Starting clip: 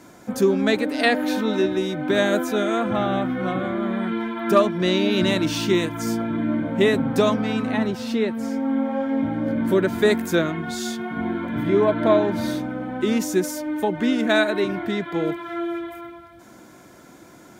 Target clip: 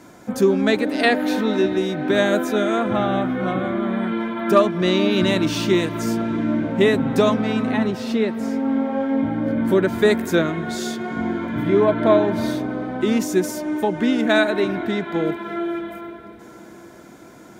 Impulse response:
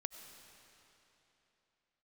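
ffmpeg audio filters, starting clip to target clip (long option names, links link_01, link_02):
-filter_complex "[0:a]asplit=2[link_01][link_02];[link_02]lowpass=frequency=3100:poles=1[link_03];[1:a]atrim=start_sample=2205,asetrate=22050,aresample=44100[link_04];[link_03][link_04]afir=irnorm=-1:irlink=0,volume=-8.5dB[link_05];[link_01][link_05]amix=inputs=2:normalize=0,volume=-1dB"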